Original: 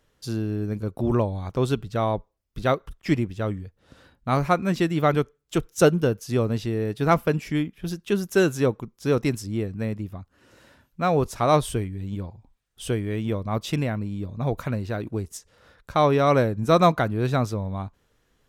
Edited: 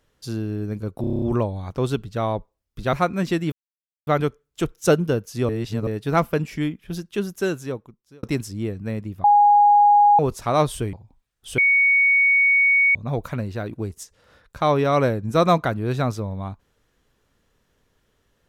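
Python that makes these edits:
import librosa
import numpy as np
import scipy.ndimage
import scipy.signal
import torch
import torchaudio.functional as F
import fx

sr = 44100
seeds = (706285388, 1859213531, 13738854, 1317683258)

y = fx.edit(x, sr, fx.stutter(start_s=1.01, slice_s=0.03, count=8),
    fx.cut(start_s=2.72, length_s=1.7),
    fx.insert_silence(at_s=5.01, length_s=0.55),
    fx.reverse_span(start_s=6.43, length_s=0.38),
    fx.fade_out_span(start_s=7.92, length_s=1.25),
    fx.bleep(start_s=10.18, length_s=0.95, hz=824.0, db=-10.5),
    fx.cut(start_s=11.87, length_s=0.4),
    fx.bleep(start_s=12.92, length_s=1.37, hz=2230.0, db=-13.5), tone=tone)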